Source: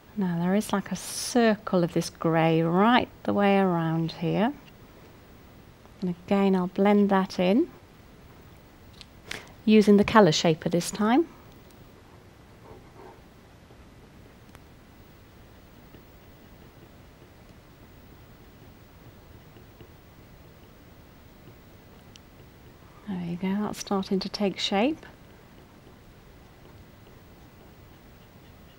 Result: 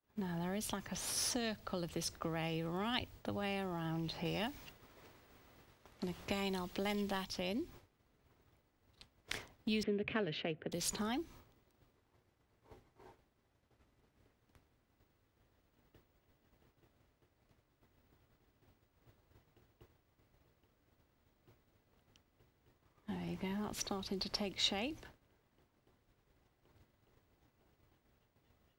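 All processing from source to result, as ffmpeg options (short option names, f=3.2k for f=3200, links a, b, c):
-filter_complex "[0:a]asettb=1/sr,asplit=3[a][b][c];[a]atrim=end=4.254[d];[b]atrim=start=4.25:end=7.25,asetpts=PTS-STARTPTS,afade=t=in:d=0.004:c=qsin,afade=t=out:st=2.996:d=0.004:c=qsin,lowshelf=f=460:g=-6.5,acontrast=79[e];[c]atrim=start=7.246[f];[d][e]acrossfade=d=0.004:c1=hsin:c2=qsin[g];[g][f]acrossfade=d=0.004:c1=qsin:c2=hsin,asettb=1/sr,asplit=3[h][i][j];[h]atrim=end=9.834[k];[i]atrim=start=9.83:end=10.72,asetpts=PTS-STARTPTS,afade=t=in:d=0.004:c=qsin,afade=t=out:st=0.886:d=0.004:c=qsin,adynamicsmooth=sensitivity=5:basefreq=1.3k,highpass=170,equalizer=f=270:t=q:w=4:g=9,equalizer=f=420:t=q:w=4:g=9,equalizer=f=660:t=q:w=4:g=5,equalizer=f=950:t=q:w=4:g=-7,equalizer=f=1.6k:t=q:w=4:g=5,equalizer=f=2.6k:t=q:w=4:g=5,lowpass=f=2.7k:w=0.5412,lowpass=f=2.7k:w=1.3066[l];[j]atrim=start=10.716[m];[k][l]acrossfade=d=0.004:c1=hsin:c2=qsin[n];[n][m]acrossfade=d=0.004:c1=qsin:c2=hsin,agate=range=-33dB:threshold=-38dB:ratio=3:detection=peak,equalizer=f=180:t=o:w=0.39:g=-6.5,acrossover=split=130|3000[o][p][q];[p]acompressor=threshold=-35dB:ratio=6[r];[o][r][q]amix=inputs=3:normalize=0,volume=-4.5dB"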